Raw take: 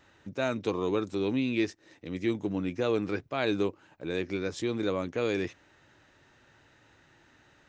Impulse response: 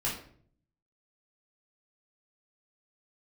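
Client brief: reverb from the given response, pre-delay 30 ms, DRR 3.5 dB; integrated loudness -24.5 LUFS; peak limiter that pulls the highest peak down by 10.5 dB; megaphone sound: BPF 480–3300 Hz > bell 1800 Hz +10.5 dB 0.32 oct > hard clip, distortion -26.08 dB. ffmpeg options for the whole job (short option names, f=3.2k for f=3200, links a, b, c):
-filter_complex "[0:a]alimiter=level_in=0.5dB:limit=-24dB:level=0:latency=1,volume=-0.5dB,asplit=2[a][b];[1:a]atrim=start_sample=2205,adelay=30[c];[b][c]afir=irnorm=-1:irlink=0,volume=-9.5dB[d];[a][d]amix=inputs=2:normalize=0,highpass=480,lowpass=3.3k,equalizer=f=1.8k:t=o:w=0.32:g=10.5,asoftclip=type=hard:threshold=-27.5dB,volume=13.5dB"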